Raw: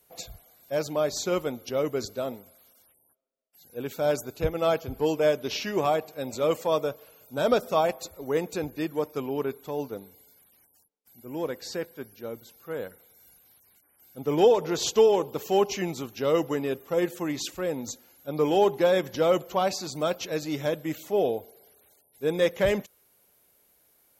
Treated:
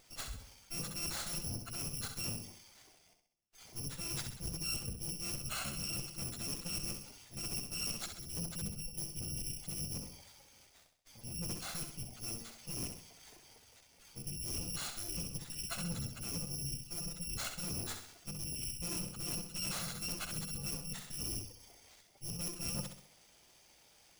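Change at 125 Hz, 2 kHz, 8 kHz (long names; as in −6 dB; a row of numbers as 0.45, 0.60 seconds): −5.0, −11.5, 0.0 decibels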